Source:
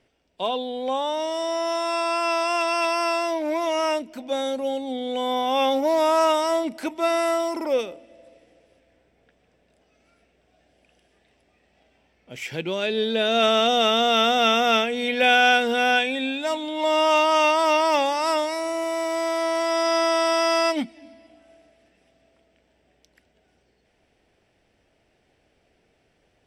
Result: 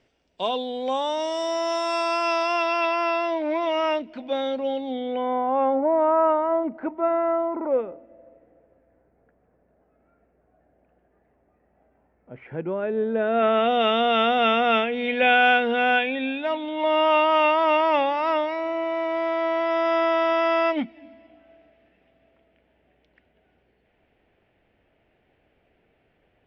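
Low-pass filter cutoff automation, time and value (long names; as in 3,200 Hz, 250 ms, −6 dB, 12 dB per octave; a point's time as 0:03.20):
low-pass filter 24 dB per octave
0:01.91 7,700 Hz
0:02.90 3,800 Hz
0:04.89 3,800 Hz
0:05.48 1,500 Hz
0:13.11 1,500 Hz
0:13.86 3,000 Hz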